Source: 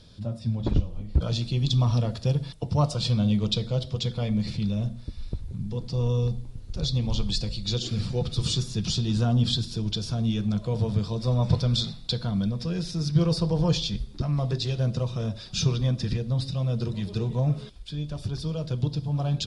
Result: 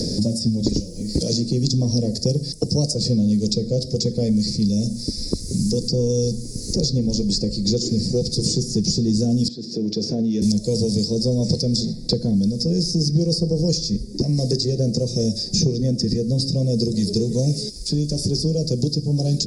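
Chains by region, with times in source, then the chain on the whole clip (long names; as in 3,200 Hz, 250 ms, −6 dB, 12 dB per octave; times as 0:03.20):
0:09.48–0:10.42: band-pass filter 260–2,500 Hz + downward compressor 4 to 1, threshold −36 dBFS
whole clip: drawn EQ curve 120 Hz 0 dB, 210 Hz +10 dB, 480 Hz +10 dB, 1,300 Hz −29 dB, 1,900 Hz −6 dB, 3,200 Hz −20 dB, 4,900 Hz +15 dB, 9,900 Hz +11 dB; multiband upward and downward compressor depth 100%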